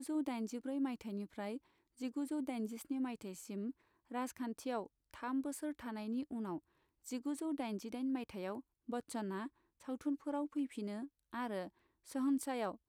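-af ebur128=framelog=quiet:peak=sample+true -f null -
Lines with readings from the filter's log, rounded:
Integrated loudness:
  I:         -41.9 LUFS
  Threshold: -52.1 LUFS
Loudness range:
  LRA:         1.6 LU
  Threshold: -62.5 LUFS
  LRA low:   -43.1 LUFS
  LRA high:  -41.5 LUFS
Sample peak:
  Peak:      -27.3 dBFS
True peak:
  Peak:      -27.3 dBFS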